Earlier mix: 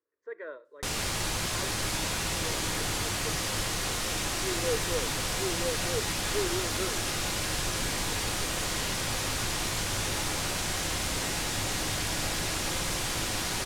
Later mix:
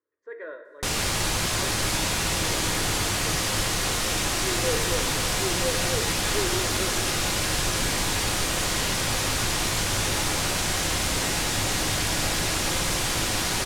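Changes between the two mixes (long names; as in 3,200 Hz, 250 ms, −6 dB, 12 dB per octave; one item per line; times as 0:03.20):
speech: send on
background +5.5 dB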